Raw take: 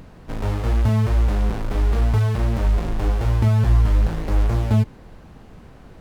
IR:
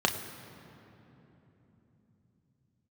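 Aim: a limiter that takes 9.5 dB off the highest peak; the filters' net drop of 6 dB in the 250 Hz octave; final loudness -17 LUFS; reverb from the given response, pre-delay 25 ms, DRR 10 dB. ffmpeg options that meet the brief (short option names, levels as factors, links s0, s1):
-filter_complex "[0:a]equalizer=f=250:t=o:g=-8,alimiter=limit=0.141:level=0:latency=1,asplit=2[s0][s1];[1:a]atrim=start_sample=2205,adelay=25[s2];[s1][s2]afir=irnorm=-1:irlink=0,volume=0.0841[s3];[s0][s3]amix=inputs=2:normalize=0,volume=2.66"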